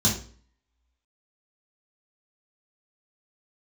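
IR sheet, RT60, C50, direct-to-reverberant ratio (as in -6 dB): 0.45 s, 7.0 dB, -5.5 dB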